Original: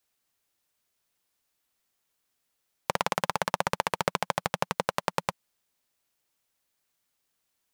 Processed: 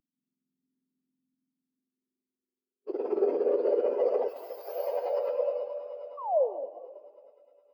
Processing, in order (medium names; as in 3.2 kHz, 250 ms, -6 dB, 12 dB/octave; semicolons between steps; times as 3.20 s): spectrum inverted on a logarithmic axis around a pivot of 1.6 kHz; expander -53 dBFS; echo with a slow build-up 105 ms, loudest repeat 5, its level -17 dB; modulation noise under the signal 11 dB; in parallel at +0.5 dB: sample-and-hold 11×; 6.17–6.69 s: on the sum: painted sound fall 220–1200 Hz -34 dBFS; upward compressor, threshold -30 dBFS; high-pass sweep 270 Hz -> 560 Hz, 1.19–4.83 s; 4.28–4.78 s: RIAA curve recording; on a send at -1 dB: reverberation RT60 3.6 s, pre-delay 81 ms; on the sum: peak limiter -14 dBFS, peak gain reduction 12.5 dB; spectral contrast expander 2.5:1; trim -1.5 dB